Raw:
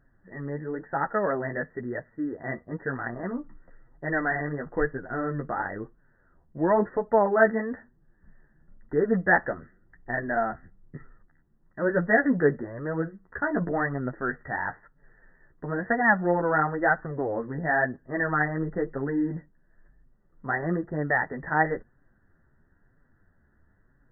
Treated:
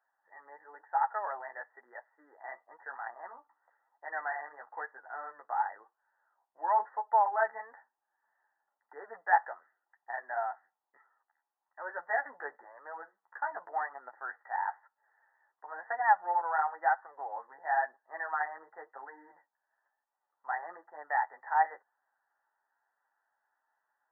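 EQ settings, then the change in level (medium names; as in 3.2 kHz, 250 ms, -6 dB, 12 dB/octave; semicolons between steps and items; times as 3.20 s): ladder high-pass 790 Hz, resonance 75%; 0.0 dB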